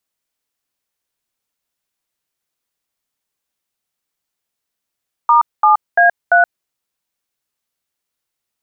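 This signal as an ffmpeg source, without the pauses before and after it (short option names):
-f lavfi -i "aevalsrc='0.335*clip(min(mod(t,0.342),0.124-mod(t,0.342))/0.002,0,1)*(eq(floor(t/0.342),0)*(sin(2*PI*941*mod(t,0.342))+sin(2*PI*1209*mod(t,0.342)))+eq(floor(t/0.342),1)*(sin(2*PI*852*mod(t,0.342))+sin(2*PI*1209*mod(t,0.342)))+eq(floor(t/0.342),2)*(sin(2*PI*697*mod(t,0.342))+sin(2*PI*1633*mod(t,0.342)))+eq(floor(t/0.342),3)*(sin(2*PI*697*mod(t,0.342))+sin(2*PI*1477*mod(t,0.342))))':d=1.368:s=44100"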